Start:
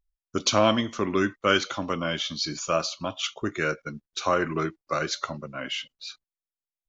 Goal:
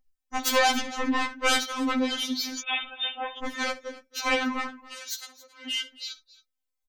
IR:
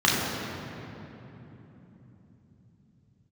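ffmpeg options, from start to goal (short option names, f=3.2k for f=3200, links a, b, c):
-filter_complex "[0:a]asplit=2[a][b];[b]asoftclip=type=tanh:threshold=-22dB,volume=-9.5dB[c];[a][c]amix=inputs=2:normalize=0,aeval=exprs='0.501*(cos(1*acos(clip(val(0)/0.501,-1,1)))-cos(1*PI/2))+0.178*(cos(7*acos(clip(val(0)/0.501,-1,1)))-cos(7*PI/2))':c=same,asettb=1/sr,asplit=3[d][e][f];[d]atrim=end=4.814[g];[e]atrim=start=4.81:end=5.67,asetpts=PTS-STARTPTS,afade=t=in:d=0.004:c=qsin,afade=t=out:st=0.856:d=0.004:c=qsin,aderivative[h];[f]atrim=start=5.666[i];[g][h]acrossfade=d=0.004:c1=hsin:c2=qsin[j];[j][i]acrossfade=d=0.004:c1=qsin:c2=hsin,asplit=2[k][l];[l]aecho=0:1:63|273:0.141|0.112[m];[k][m]amix=inputs=2:normalize=0,asettb=1/sr,asplit=3[n][o][p];[n]atrim=end=2.604[q];[o]atrim=start=2.6:end=3.38,asetpts=PTS-STARTPTS,afade=t=in:d=0.004:c=qsin,afade=t=out:st=0.776:d=0.004:c=qsin,lowpass=f=3.2k:t=q:w=0.5098,lowpass=f=3.2k:t=q:w=0.6013,lowpass=f=3.2k:t=q:w=0.9,lowpass=f=3.2k:t=q:w=2.563,afreqshift=-3800[r];[p]atrim=start=3.376[s];[q][r]acrossfade=d=0.004:c1=hsin:c2=qsin[t];[t][s]acrossfade=d=0.004:c1=qsin:c2=hsin,afftfilt=real='re*3.46*eq(mod(b,12),0)':imag='im*3.46*eq(mod(b,12),0)':win_size=2048:overlap=0.75"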